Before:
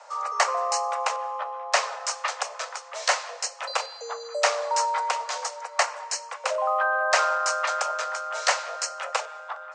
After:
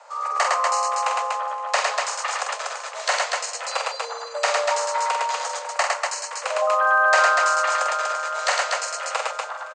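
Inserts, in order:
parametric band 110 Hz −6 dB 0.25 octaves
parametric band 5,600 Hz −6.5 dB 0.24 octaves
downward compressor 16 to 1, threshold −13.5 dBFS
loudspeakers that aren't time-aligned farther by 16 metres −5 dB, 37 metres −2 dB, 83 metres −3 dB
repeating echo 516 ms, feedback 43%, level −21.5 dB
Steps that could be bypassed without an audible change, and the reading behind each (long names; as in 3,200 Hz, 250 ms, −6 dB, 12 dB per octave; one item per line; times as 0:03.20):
parametric band 110 Hz: nothing at its input below 430 Hz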